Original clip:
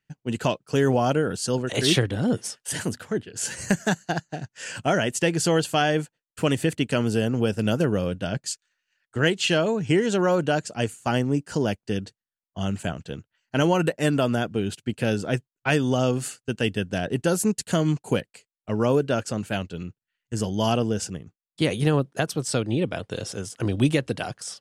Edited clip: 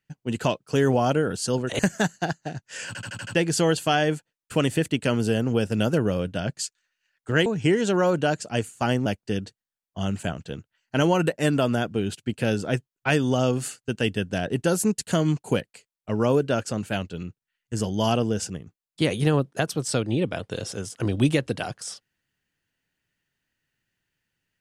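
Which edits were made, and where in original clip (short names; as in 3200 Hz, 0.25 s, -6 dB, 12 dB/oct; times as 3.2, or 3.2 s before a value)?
1.79–3.66 cut
4.74 stutter in place 0.08 s, 6 plays
9.33–9.71 cut
11.31–11.66 cut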